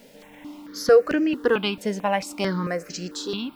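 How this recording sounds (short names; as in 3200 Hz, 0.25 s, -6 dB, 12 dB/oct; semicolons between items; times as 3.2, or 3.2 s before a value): a quantiser's noise floor 10-bit, dither triangular; notches that jump at a steady rate 4.5 Hz 320–3700 Hz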